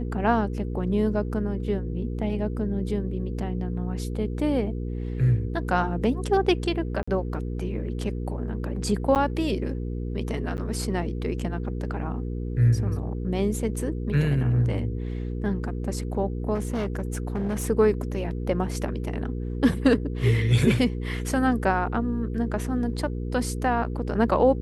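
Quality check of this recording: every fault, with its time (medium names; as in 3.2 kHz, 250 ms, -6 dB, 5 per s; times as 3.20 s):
hum 60 Hz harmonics 8 -30 dBFS
7.03–7.08 s: dropout 45 ms
9.15–9.16 s: dropout 8.6 ms
10.57–10.58 s: dropout 9.9 ms
16.54–17.65 s: clipped -23 dBFS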